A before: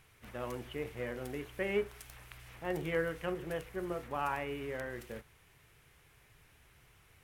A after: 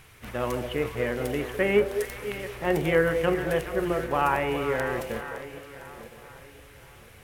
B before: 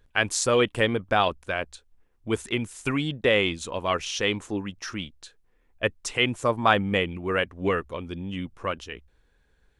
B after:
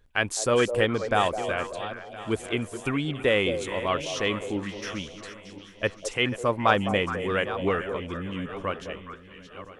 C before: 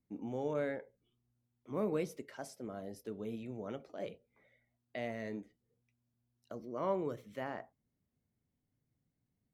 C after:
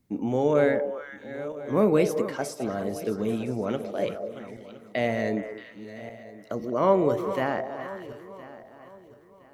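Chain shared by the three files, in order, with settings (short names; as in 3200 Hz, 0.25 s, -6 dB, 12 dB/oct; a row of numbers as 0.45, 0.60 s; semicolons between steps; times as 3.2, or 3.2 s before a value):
regenerating reverse delay 0.508 s, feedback 53%, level -13 dB; on a send: delay with a stepping band-pass 0.209 s, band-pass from 540 Hz, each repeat 1.4 oct, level -6 dB; on the sum: dynamic EQ 4800 Hz, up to -3 dB, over -44 dBFS, Q 0.71; match loudness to -27 LUFS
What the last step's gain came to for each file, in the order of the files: +11.0, -1.0, +13.5 dB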